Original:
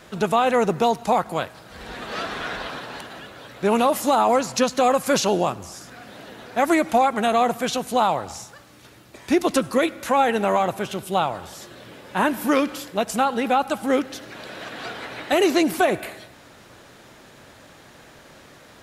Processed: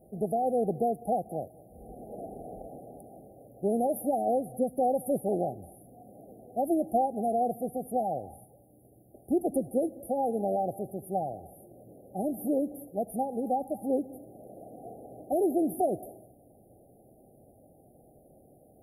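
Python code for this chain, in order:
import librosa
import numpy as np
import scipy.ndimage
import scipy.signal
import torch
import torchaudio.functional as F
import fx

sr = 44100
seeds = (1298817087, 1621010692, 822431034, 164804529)

y = fx.brickwall_bandstop(x, sr, low_hz=820.0, high_hz=9500.0)
y = y + 10.0 ** (-23.0 / 20.0) * np.pad(y, (int(207 * sr / 1000.0), 0))[:len(y)]
y = F.gain(torch.from_numpy(y), -7.5).numpy()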